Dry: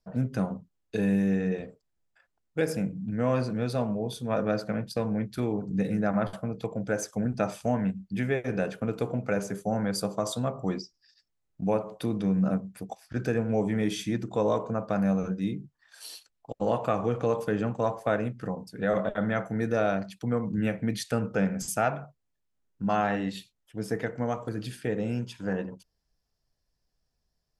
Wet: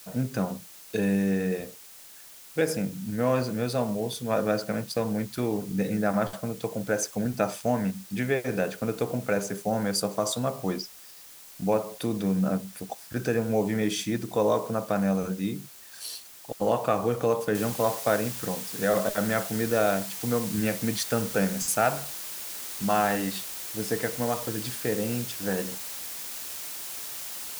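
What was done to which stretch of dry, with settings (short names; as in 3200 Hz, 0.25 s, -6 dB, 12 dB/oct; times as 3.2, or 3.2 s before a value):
17.55 noise floor step -54 dB -43 dB
whole clip: tone controls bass -4 dB, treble +4 dB; gain +2.5 dB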